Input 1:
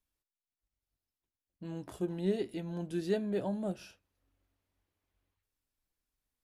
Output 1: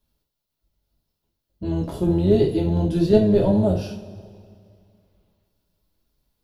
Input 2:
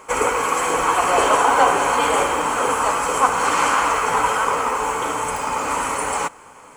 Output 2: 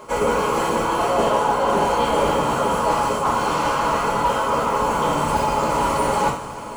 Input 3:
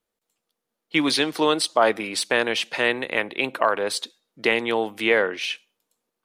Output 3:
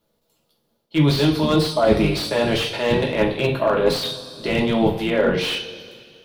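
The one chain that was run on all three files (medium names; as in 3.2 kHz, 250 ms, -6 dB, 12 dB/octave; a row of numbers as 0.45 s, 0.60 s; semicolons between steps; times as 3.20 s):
octave divider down 1 oct, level -2 dB; reverse; compression 12:1, threshold -27 dBFS; reverse; ten-band graphic EQ 125 Hz +5 dB, 500 Hz +3 dB, 2 kHz -9 dB, 4 kHz +4 dB, 8 kHz -9 dB; two-slope reverb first 0.38 s, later 2.3 s, from -18 dB, DRR -2.5 dB; slew-rate limiter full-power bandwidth 87 Hz; normalise loudness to -20 LUFS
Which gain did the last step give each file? +10.0 dB, +7.5 dB, +8.5 dB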